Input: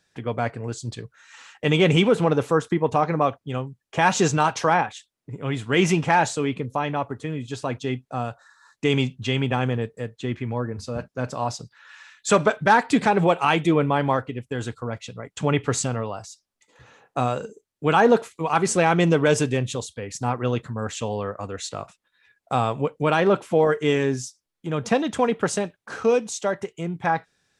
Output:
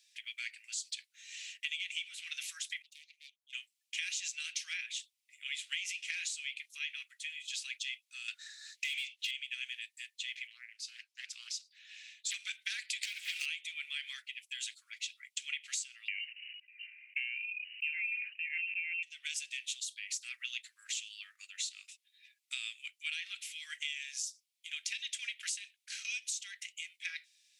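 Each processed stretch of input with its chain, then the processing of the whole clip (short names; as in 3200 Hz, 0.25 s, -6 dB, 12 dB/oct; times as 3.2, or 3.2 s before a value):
2.82–3.53 self-modulated delay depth 0.17 ms + Butterworth band-stop 1300 Hz, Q 0.68 + passive tone stack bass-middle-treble 6-0-2
8.28–9.31 HPF 1200 Hz + overdrive pedal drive 23 dB, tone 2000 Hz, clips at -13.5 dBFS
10.47–12.34 tilt -2 dB/oct + Doppler distortion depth 0.65 ms
13.03–13.46 sample leveller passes 3 + compressor 4:1, threshold -17 dBFS
16.08–19.03 inverted band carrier 2900 Hz + sustainer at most 50 dB/s
whole clip: steep high-pass 2200 Hz 48 dB/oct; compressor 20:1, threshold -38 dBFS; gain +3.5 dB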